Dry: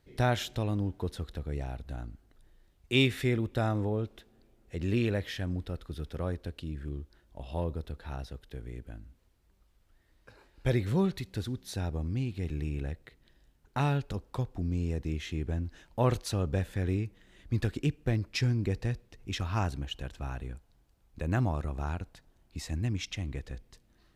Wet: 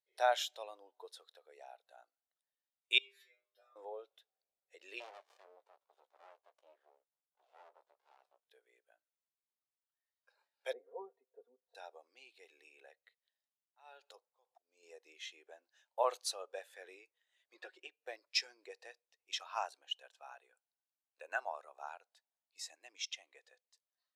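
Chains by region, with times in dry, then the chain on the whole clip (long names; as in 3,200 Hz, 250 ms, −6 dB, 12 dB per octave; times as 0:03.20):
0:02.98–0:03.76: parametric band 9,100 Hz −8 dB 0.43 octaves + downward compressor 2.5 to 1, threshold −31 dBFS + stiff-string resonator 98 Hz, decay 0.7 s, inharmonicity 0.002
0:05.00–0:08.45: bass and treble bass 0 dB, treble −9 dB + double-tracking delay 16 ms −8 dB + windowed peak hold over 65 samples
0:10.73–0:11.75: Chebyshev band-pass filter 110–580 Hz + comb filter 4.3 ms, depth 94%
0:12.84–0:14.83: downward compressor 10 to 1, threshold −30 dBFS + volume swells 218 ms
0:17.54–0:17.95: low-pass filter 2,500 Hz 6 dB per octave + comb filter 5.5 ms, depth 61%
0:20.53–0:21.57: mains-hum notches 50/100/150/200/250/300/350 Hz + hollow resonant body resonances 1,500/2,700 Hz, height 8 dB, ringing for 30 ms
whole clip: Bessel high-pass filter 930 Hz, order 6; parametric band 1,700 Hz −7.5 dB 2.3 octaves; every bin expanded away from the loudest bin 1.5 to 1; level +6.5 dB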